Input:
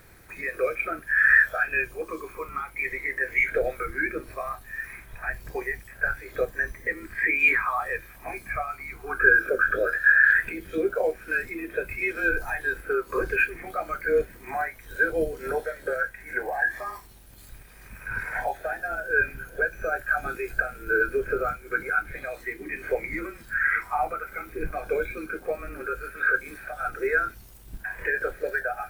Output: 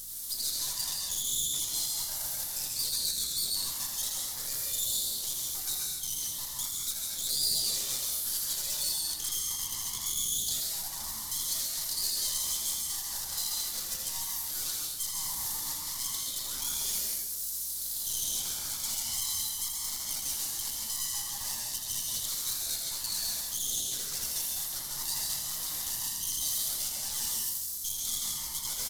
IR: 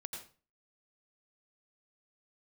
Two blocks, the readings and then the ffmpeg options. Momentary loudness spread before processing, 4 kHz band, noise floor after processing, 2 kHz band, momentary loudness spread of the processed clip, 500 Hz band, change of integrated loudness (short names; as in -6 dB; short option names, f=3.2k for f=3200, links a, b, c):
14 LU, n/a, -38 dBFS, -28.5 dB, 4 LU, -28.0 dB, -4.5 dB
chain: -filter_complex "[0:a]highpass=320,areverse,acompressor=threshold=-36dB:ratio=5,areverse,alimiter=level_in=7dB:limit=-24dB:level=0:latency=1:release=200,volume=-7dB,asplit=2[a][b];[b]aeval=exprs='(mod(70.8*val(0)+1,2)-1)/70.8':c=same,volume=-9dB[c];[a][c]amix=inputs=2:normalize=0,aecho=1:1:81|240:0.596|0.299,aeval=exprs='abs(val(0))':c=same,aexciter=amount=13.5:drive=5.8:freq=3.9k,aeval=exprs='val(0)+0.002*(sin(2*PI*60*n/s)+sin(2*PI*2*60*n/s)/2+sin(2*PI*3*60*n/s)/3+sin(2*PI*4*60*n/s)/4+sin(2*PI*5*60*n/s)/5)':c=same[d];[1:a]atrim=start_sample=2205,asetrate=27783,aresample=44100[e];[d][e]afir=irnorm=-1:irlink=0,volume=-5dB"